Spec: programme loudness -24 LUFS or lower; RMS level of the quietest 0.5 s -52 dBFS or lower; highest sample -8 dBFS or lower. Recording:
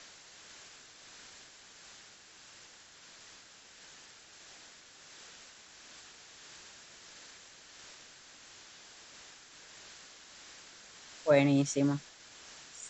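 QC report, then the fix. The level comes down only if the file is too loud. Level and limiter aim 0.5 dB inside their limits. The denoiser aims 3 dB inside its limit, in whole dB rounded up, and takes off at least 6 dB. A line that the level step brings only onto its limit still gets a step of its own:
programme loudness -29.0 LUFS: pass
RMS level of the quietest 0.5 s -56 dBFS: pass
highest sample -12.5 dBFS: pass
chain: none needed

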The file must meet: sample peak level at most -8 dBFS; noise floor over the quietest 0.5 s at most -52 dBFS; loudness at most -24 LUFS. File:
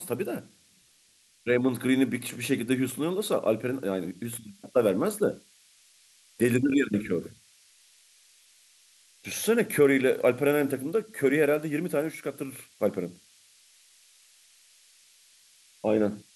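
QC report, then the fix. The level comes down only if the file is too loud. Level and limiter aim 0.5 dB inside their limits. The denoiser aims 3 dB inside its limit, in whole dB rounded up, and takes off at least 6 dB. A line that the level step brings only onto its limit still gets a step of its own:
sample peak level -10.0 dBFS: pass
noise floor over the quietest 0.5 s -63 dBFS: pass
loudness -27.0 LUFS: pass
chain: none needed

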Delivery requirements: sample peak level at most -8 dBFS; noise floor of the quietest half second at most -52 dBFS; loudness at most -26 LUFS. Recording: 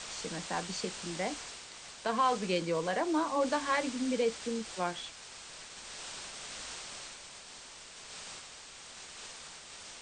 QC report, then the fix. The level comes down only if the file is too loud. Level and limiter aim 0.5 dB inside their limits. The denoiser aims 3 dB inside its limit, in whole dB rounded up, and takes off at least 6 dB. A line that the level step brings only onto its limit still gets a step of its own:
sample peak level -17.0 dBFS: pass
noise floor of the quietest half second -50 dBFS: fail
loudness -35.0 LUFS: pass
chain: noise reduction 6 dB, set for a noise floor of -50 dBFS

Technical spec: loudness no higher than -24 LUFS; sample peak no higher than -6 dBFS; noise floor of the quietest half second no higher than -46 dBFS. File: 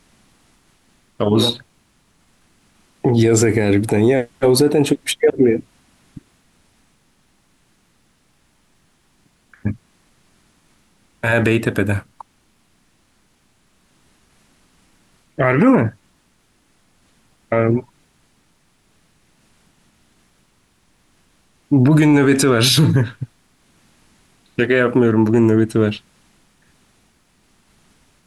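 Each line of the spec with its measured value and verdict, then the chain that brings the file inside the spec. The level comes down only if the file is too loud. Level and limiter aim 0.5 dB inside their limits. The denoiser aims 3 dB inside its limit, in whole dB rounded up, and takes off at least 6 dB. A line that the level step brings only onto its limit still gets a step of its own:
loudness -16.0 LUFS: fail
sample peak -5.0 dBFS: fail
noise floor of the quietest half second -60 dBFS: pass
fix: trim -8.5 dB

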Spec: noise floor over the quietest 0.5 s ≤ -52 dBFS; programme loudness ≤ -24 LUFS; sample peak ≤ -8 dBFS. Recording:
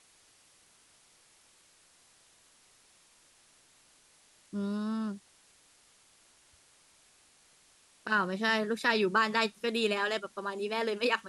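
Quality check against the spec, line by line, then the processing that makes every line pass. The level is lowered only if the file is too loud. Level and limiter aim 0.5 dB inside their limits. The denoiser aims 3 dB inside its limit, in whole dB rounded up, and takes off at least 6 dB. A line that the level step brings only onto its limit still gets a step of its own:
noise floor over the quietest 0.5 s -64 dBFS: pass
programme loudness -30.5 LUFS: pass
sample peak -14.0 dBFS: pass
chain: none needed

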